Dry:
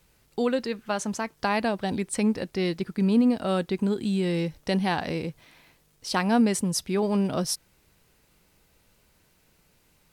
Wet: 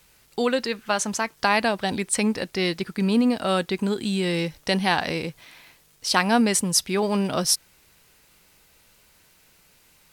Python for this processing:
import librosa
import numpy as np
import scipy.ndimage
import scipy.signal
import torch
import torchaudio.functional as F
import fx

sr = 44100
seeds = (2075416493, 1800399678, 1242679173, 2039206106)

y = fx.tilt_shelf(x, sr, db=-4.5, hz=730.0)
y = y * 10.0 ** (4.0 / 20.0)